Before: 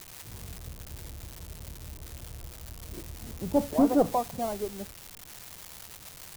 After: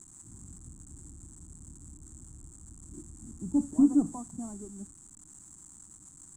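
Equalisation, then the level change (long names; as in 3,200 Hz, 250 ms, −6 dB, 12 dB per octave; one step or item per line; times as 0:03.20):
drawn EQ curve 110 Hz 0 dB, 170 Hz +4 dB, 300 Hz +9 dB, 510 Hz −19 dB, 910 Hz −7 dB, 1,300 Hz −7 dB, 2,500 Hz −23 dB, 5,200 Hz −16 dB, 7,700 Hz +15 dB, 13,000 Hz −26 dB
−7.0 dB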